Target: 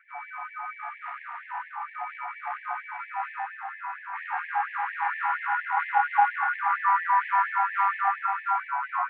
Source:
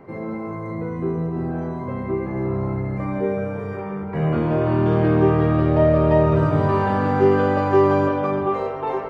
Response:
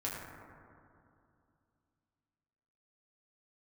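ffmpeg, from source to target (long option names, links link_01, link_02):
-filter_complex "[0:a]acontrast=66,acrusher=bits=3:mode=log:mix=0:aa=0.000001,highpass=frequency=280:width_type=q:width=0.5412,highpass=frequency=280:width_type=q:width=1.307,lowpass=frequency=2000:width_type=q:width=0.5176,lowpass=frequency=2000:width_type=q:width=0.7071,lowpass=frequency=2000:width_type=q:width=1.932,afreqshift=200,asplit=2[link_01][link_02];[1:a]atrim=start_sample=2205,asetrate=48510,aresample=44100,adelay=50[link_03];[link_02][link_03]afir=irnorm=-1:irlink=0,volume=-7.5dB[link_04];[link_01][link_04]amix=inputs=2:normalize=0,afftfilt=real='re*gte(b*sr/1024,700*pow(1700/700,0.5+0.5*sin(2*PI*4.3*pts/sr)))':imag='im*gte(b*sr/1024,700*pow(1700/700,0.5+0.5*sin(2*PI*4.3*pts/sr)))':win_size=1024:overlap=0.75,volume=-5.5dB"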